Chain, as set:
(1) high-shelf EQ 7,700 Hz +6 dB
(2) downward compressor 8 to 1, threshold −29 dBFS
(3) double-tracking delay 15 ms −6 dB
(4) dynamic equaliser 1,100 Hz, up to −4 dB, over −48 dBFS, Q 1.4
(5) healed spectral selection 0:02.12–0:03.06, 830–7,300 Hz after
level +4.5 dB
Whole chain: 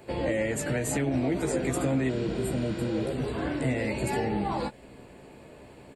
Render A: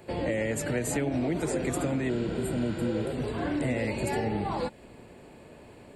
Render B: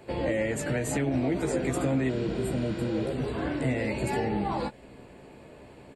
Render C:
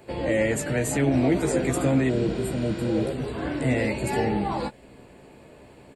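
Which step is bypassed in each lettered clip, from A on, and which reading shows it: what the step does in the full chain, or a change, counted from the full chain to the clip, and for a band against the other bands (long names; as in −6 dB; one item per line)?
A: 3, change in momentary loudness spread −1 LU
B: 1, 8 kHz band −3.0 dB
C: 2, average gain reduction 2.5 dB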